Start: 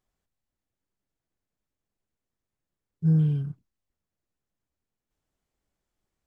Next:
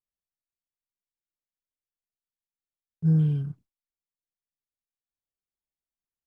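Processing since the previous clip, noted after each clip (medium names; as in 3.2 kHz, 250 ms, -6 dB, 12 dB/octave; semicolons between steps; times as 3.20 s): gate with hold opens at -50 dBFS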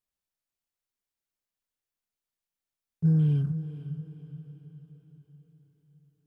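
compression, threshold -23 dBFS, peak gain reduction 6 dB; echo that smears into a reverb 488 ms, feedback 50%, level -12 dB; trim +3.5 dB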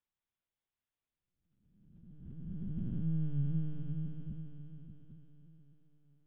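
spectral blur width 1220 ms; LPC vocoder at 8 kHz pitch kept; hum notches 50/100/150 Hz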